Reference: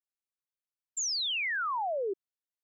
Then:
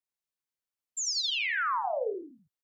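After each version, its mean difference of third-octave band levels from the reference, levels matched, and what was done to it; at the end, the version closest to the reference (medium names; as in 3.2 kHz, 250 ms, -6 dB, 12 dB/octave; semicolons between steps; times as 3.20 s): 4.5 dB: flange 1.9 Hz, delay 6.3 ms, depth 5.4 ms, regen -23%; on a send: frequency-shifting echo 83 ms, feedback 37%, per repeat -59 Hz, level -6 dB; on the sum: trim +3.5 dB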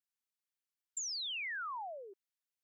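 1.0 dB: high-pass 1.3 kHz 12 dB/octave; compression, threshold -39 dBFS, peak gain reduction 8 dB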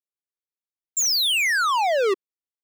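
14.0 dB: peaking EQ 380 Hz +10 dB 0.86 oct; waveshaping leveller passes 5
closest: second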